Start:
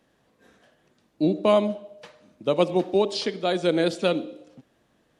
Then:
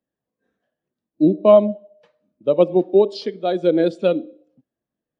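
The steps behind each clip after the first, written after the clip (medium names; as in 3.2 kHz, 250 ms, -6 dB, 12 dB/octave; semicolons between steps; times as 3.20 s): spectral contrast expander 1.5:1; trim +6 dB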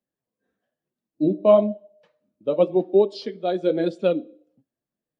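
flange 1 Hz, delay 4.7 ms, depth 6.6 ms, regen -48%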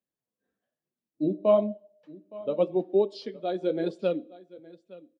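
delay 866 ms -20 dB; trim -6 dB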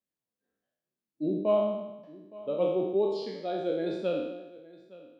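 spectral sustain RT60 1.01 s; trim -5 dB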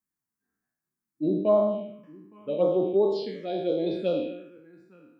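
touch-sensitive phaser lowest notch 550 Hz, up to 2.7 kHz, full sweep at -22.5 dBFS; trim +4.5 dB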